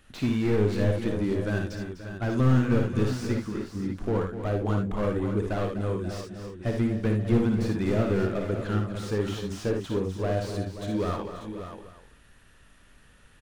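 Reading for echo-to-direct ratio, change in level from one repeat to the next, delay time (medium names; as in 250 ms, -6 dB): -1.5 dB, no regular repeats, 56 ms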